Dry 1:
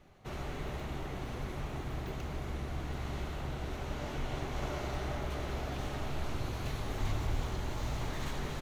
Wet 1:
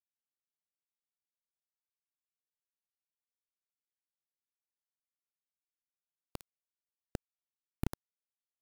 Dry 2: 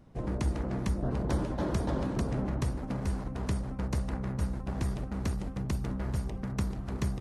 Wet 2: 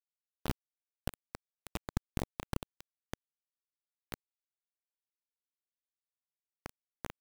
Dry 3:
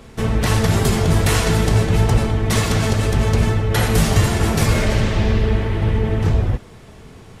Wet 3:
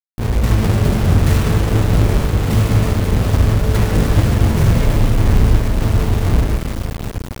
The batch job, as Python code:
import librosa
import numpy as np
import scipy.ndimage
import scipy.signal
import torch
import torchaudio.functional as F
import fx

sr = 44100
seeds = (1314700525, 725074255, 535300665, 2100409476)

y = fx.halfwave_hold(x, sr)
y = fx.echo_diffused(y, sr, ms=803, feedback_pct=66, wet_db=-10.5)
y = fx.dmg_noise_colour(y, sr, seeds[0], colour='violet', level_db=-55.0)
y = fx.rev_spring(y, sr, rt60_s=1.3, pass_ms=(34, 46), chirp_ms=60, drr_db=4.5)
y = np.where(np.abs(y) >= 10.0 ** (-15.5 / 20.0), y, 0.0)
y = fx.low_shelf(y, sr, hz=330.0, db=7.0)
y = y * librosa.db_to_amplitude(-9.5)